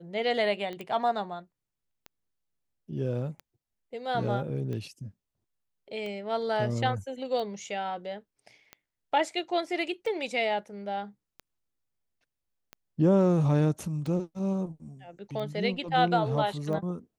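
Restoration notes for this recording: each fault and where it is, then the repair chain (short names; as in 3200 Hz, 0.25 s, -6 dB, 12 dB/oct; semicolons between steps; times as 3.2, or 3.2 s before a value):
tick 45 rpm -26 dBFS
0.81 pop -25 dBFS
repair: de-click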